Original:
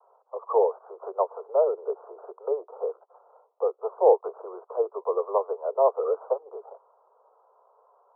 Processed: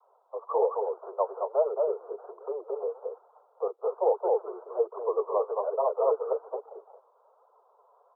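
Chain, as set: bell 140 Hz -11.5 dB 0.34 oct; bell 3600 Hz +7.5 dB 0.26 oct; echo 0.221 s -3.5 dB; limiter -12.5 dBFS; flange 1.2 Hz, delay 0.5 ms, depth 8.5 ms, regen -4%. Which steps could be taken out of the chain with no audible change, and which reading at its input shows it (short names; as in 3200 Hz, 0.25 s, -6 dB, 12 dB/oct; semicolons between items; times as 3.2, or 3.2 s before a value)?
bell 140 Hz: input band starts at 340 Hz; bell 3600 Hz: input band ends at 1300 Hz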